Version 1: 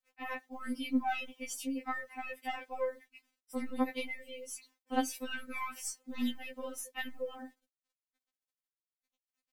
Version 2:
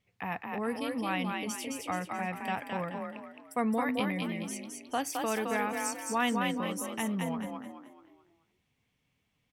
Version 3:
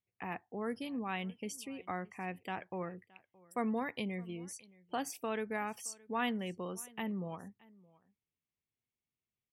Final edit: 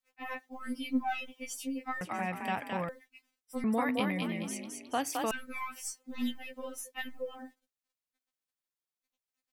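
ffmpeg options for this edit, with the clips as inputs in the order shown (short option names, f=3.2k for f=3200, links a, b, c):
-filter_complex "[1:a]asplit=2[a][b];[0:a]asplit=3[c][d][e];[c]atrim=end=2.012[f];[a]atrim=start=2.008:end=2.892[g];[d]atrim=start=2.888:end=3.642[h];[b]atrim=start=3.638:end=5.312[i];[e]atrim=start=5.308[j];[f][g]acrossfade=d=0.004:c1=hsin:c2=hsin[k];[k][h]acrossfade=d=0.004:c1=hsin:c2=hsin[l];[l][i]acrossfade=d=0.004:c1=hsin:c2=hsin[m];[m][j]acrossfade=d=0.004:c1=hsin:c2=hsin"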